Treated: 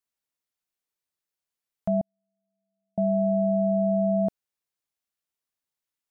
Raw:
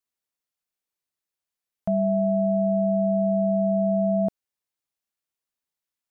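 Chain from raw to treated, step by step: 2.01–2.98 s: gate -7 dBFS, range -59 dB; trim -1 dB

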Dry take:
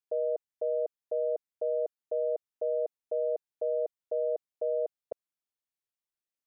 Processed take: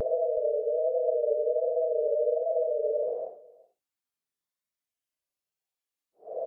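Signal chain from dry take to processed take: Paulstretch 13×, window 0.05 s, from 4.12 s; vibrato 1.3 Hz 80 cents; delay 373 ms -22.5 dB; trim +2 dB

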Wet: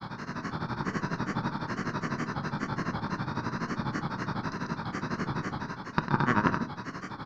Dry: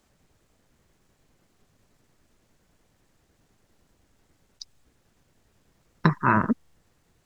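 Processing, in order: spectral levelling over time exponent 0.2; expander -18 dBFS; level rider gain up to 6 dB; delay 150 ms -5 dB; granulator, grains 12 per s, pitch spread up and down by 3 st; Chebyshev shaper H 2 -12 dB, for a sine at -2.5 dBFS; on a send at -11.5 dB: reverberation RT60 0.60 s, pre-delay 3 ms; on the sum: tape noise reduction on one side only encoder only; trim -6.5 dB

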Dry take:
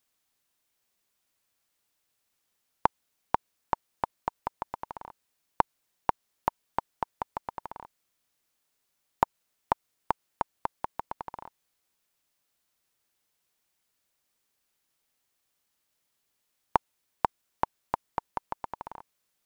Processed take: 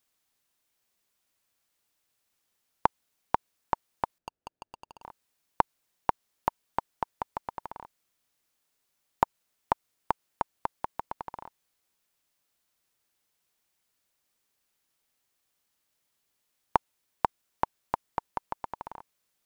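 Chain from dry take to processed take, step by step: 4.18–5.02 s: median filter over 41 samples

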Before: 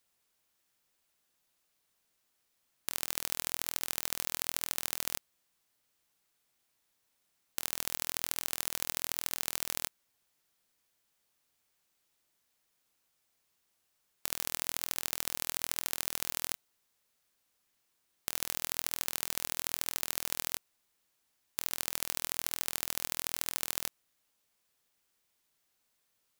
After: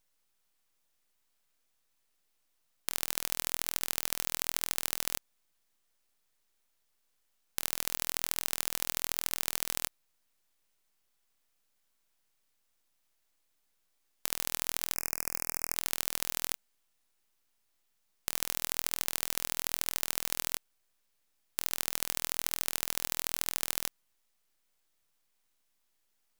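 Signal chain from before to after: full-wave rectifier; 14.95–15.76 s: elliptic band-stop 2.5–5 kHz, stop band 40 dB; trim +2 dB

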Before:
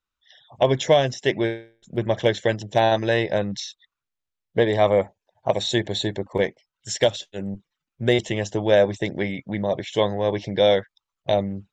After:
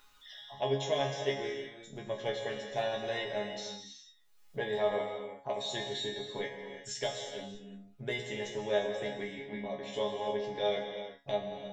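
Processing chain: peaking EQ 110 Hz -6.5 dB 2.3 oct; upward compressor, threshold -25 dBFS; chord resonator C#3 fifth, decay 0.26 s; gated-style reverb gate 400 ms flat, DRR 3.5 dB

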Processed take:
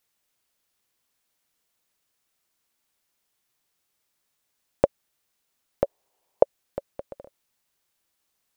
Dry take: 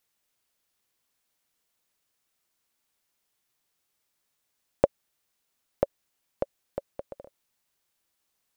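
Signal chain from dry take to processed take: 5.84–6.43 s: high-order bell 610 Hz +12 dB; trim +1.5 dB

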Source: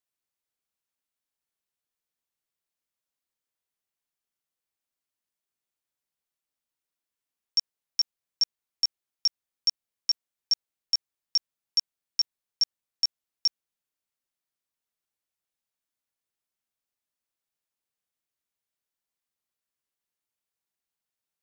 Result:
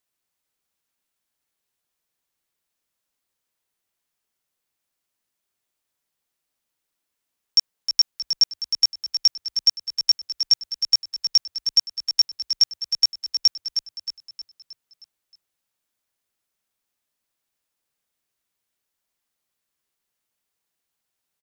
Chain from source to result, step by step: frequency-shifting echo 313 ms, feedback 50%, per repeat -34 Hz, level -8 dB; trim +7.5 dB

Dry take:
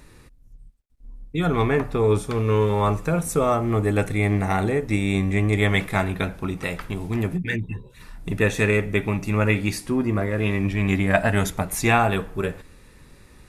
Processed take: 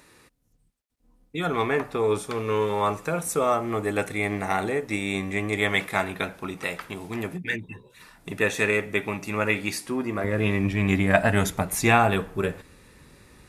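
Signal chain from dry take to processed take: high-pass 440 Hz 6 dB/octave, from 10.24 s 80 Hz

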